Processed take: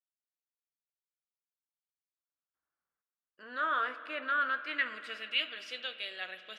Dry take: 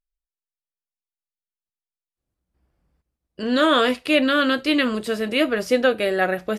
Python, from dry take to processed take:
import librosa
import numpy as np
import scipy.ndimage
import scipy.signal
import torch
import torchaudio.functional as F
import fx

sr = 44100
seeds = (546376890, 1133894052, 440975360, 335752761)

y = fx.rider(x, sr, range_db=10, speed_s=0.5)
y = fx.filter_sweep_bandpass(y, sr, from_hz=1400.0, to_hz=3300.0, start_s=4.49, end_s=5.5, q=3.3)
y = fx.rev_spring(y, sr, rt60_s=3.5, pass_ms=(54,), chirp_ms=35, drr_db=12.0)
y = F.gain(torch.from_numpy(y), -5.0).numpy()